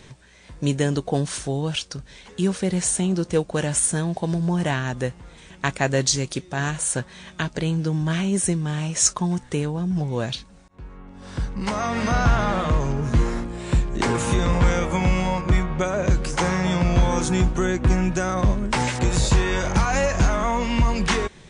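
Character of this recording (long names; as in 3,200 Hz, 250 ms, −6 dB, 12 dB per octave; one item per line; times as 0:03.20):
background noise floor −47 dBFS
spectral slope −4.5 dB per octave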